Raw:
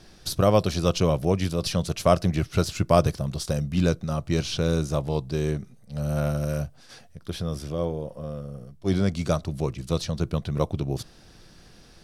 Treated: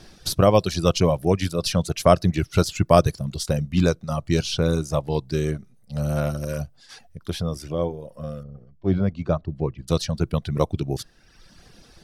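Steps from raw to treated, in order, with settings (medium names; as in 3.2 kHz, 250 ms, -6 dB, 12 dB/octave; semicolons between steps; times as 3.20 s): reverb removal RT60 1.1 s; 8.43–9.88 s: tape spacing loss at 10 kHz 39 dB; trim +4 dB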